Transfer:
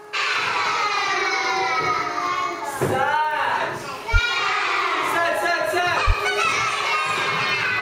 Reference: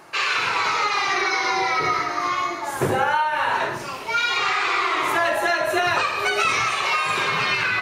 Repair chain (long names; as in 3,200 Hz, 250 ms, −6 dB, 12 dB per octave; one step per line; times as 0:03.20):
click removal
hum removal 419.3 Hz, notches 4
0:04.12–0:04.24: high-pass filter 140 Hz 24 dB per octave
0:06.06–0:06.18: high-pass filter 140 Hz 24 dB per octave